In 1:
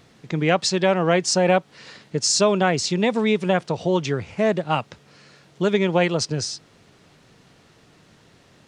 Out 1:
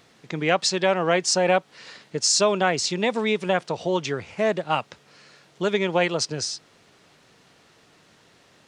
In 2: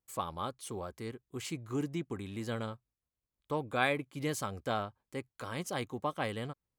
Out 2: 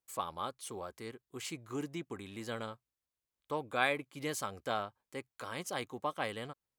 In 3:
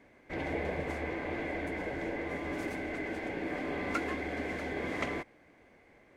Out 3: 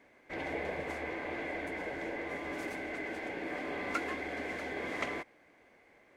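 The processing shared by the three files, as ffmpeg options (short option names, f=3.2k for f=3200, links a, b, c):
-af "lowshelf=f=260:g=-10"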